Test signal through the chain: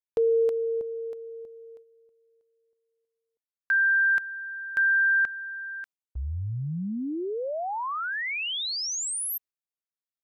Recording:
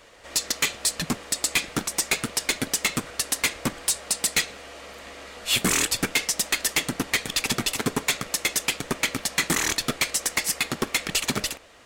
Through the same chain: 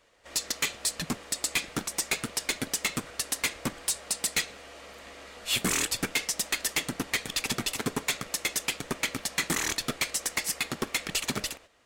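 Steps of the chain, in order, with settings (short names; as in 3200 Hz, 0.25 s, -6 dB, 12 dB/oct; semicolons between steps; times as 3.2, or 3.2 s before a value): gate -45 dBFS, range -8 dB; gain -5 dB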